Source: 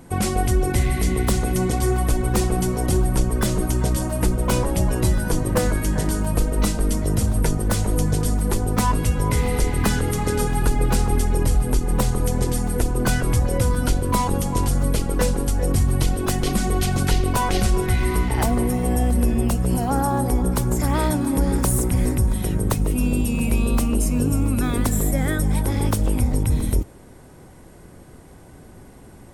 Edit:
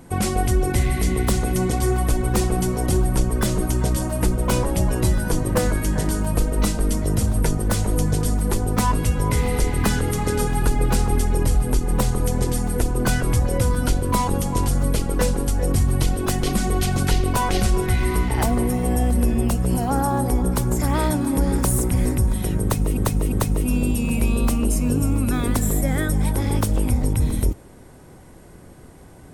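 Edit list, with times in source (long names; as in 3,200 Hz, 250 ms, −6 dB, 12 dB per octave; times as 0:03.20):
0:22.62–0:22.97: repeat, 3 plays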